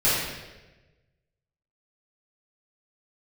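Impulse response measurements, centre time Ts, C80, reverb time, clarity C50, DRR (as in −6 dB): 86 ms, 2.0 dB, 1.2 s, −1.5 dB, −13.5 dB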